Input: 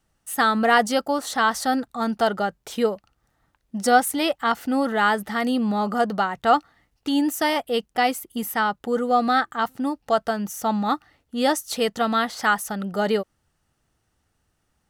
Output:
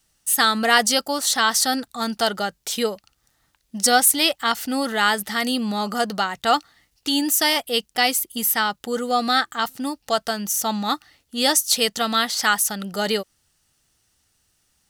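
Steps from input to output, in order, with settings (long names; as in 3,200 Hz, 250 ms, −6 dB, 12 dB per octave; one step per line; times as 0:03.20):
drawn EQ curve 730 Hz 0 dB, 1,300 Hz +2 dB, 4,700 Hz +14 dB
level −2 dB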